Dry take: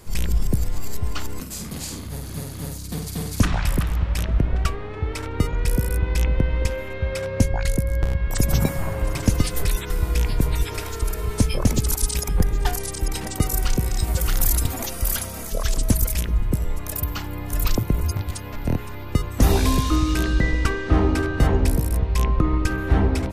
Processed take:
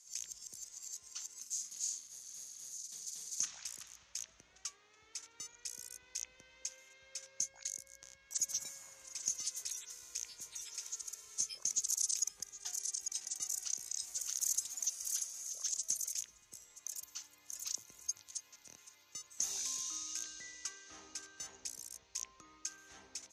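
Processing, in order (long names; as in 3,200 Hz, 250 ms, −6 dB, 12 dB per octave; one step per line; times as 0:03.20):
resonant band-pass 6,400 Hz, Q 7.7
level +3 dB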